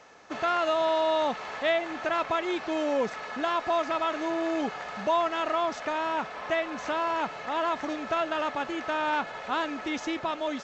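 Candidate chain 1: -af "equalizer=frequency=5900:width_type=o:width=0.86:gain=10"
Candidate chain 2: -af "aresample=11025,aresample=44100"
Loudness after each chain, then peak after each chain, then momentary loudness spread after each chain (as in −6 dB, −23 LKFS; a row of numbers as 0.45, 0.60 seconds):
−28.5, −29.0 LKFS; −14.5, −15.5 dBFS; 6, 6 LU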